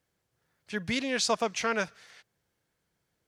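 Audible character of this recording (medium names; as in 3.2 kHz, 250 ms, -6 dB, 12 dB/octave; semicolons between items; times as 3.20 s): noise floor -80 dBFS; spectral tilt -2.5 dB/octave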